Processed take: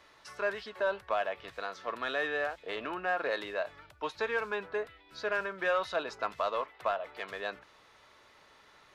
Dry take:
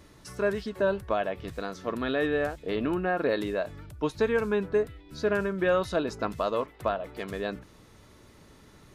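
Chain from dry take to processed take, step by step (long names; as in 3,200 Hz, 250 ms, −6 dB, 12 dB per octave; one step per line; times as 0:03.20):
three-way crossover with the lows and the highs turned down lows −21 dB, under 570 Hz, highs −14 dB, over 4,900 Hz
in parallel at −6 dB: soft clipping −31 dBFS, distortion −9 dB
on the sum: level −2 dB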